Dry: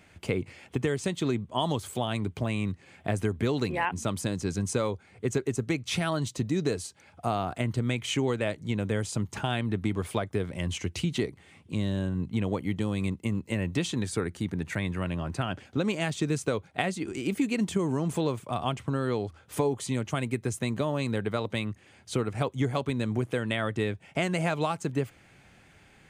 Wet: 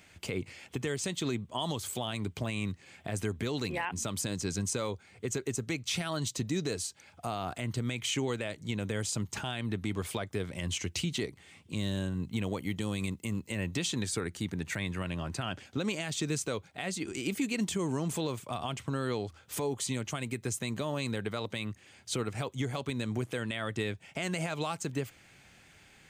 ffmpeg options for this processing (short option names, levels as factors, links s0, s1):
-filter_complex "[0:a]asettb=1/sr,asplit=3[s0][s1][s2];[s0]atrim=end=11.774[s3];[s1]atrim=start=11.77:end=13.47,asetpts=PTS-STARTPTS,afade=t=in:d=0.004:c=qsin,afade=t=out:st=1.696:d=0.004:c=qsin,highshelf=f=8500:g=6[s4];[s2]atrim=start=13.466[s5];[s3][s4]acrossfade=d=0.004:c1=hsin:c2=qsin[s6];[s6][s5]acrossfade=d=0.004:c1=qsin:c2=hsin,highshelf=f=2500:g=10,alimiter=limit=0.126:level=0:latency=1:release=53,equalizer=f=10000:t=o:w=0.28:g=-6,volume=0.631"